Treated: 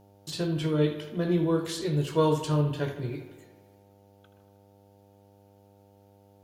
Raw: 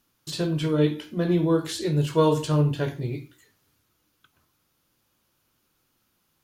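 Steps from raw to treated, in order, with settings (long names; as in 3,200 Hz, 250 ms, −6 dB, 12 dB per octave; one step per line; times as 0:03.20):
hum with harmonics 100 Hz, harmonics 9, −54 dBFS −3 dB per octave
on a send: bucket-brigade delay 78 ms, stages 2,048, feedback 67%, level −12 dB
on the sum: level −3.5 dB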